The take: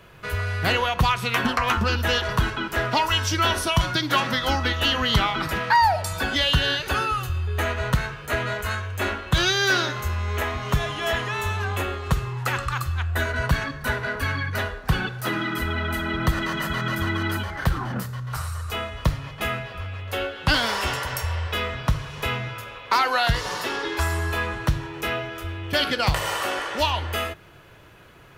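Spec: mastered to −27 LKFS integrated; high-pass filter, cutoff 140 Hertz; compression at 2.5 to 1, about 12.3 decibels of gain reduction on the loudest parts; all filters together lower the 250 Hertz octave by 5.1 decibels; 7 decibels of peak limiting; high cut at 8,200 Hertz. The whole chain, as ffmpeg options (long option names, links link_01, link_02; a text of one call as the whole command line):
ffmpeg -i in.wav -af "highpass=140,lowpass=8200,equalizer=frequency=250:width_type=o:gain=-6.5,acompressor=threshold=-34dB:ratio=2.5,volume=7.5dB,alimiter=limit=-16dB:level=0:latency=1" out.wav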